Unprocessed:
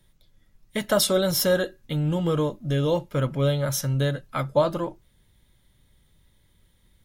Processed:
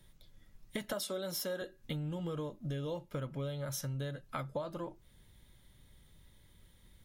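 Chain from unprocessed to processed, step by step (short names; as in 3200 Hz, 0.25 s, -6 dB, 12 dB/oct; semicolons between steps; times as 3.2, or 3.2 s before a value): 0.93–1.62 HPF 190 Hz 24 dB/oct; compressor 6:1, threshold -37 dBFS, peak gain reduction 20 dB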